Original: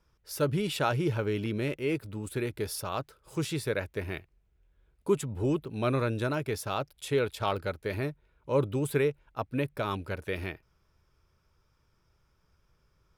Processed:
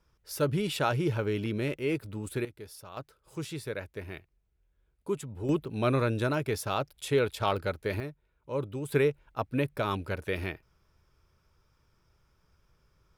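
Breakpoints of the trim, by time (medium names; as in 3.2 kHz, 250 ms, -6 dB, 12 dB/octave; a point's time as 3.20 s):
0 dB
from 2.45 s -12 dB
from 2.97 s -5.5 dB
from 5.49 s +1.5 dB
from 8.00 s -6 dB
from 8.92 s +1.5 dB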